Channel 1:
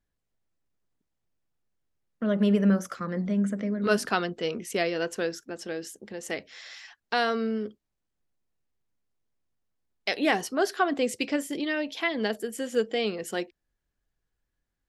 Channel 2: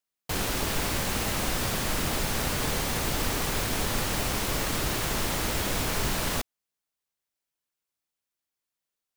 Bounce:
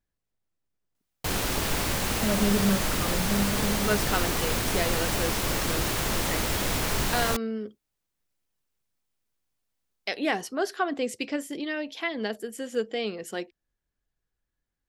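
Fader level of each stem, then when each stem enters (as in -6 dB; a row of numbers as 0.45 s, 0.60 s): -2.5 dB, +1.0 dB; 0.00 s, 0.95 s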